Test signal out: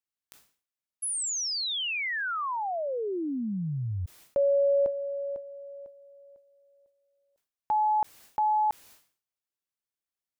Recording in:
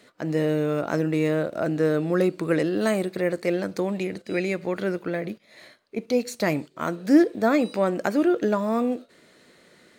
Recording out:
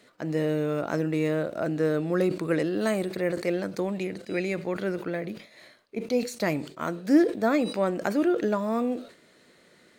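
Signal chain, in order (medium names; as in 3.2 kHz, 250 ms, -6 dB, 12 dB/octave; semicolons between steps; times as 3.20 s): decay stretcher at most 130 dB/s; trim -3 dB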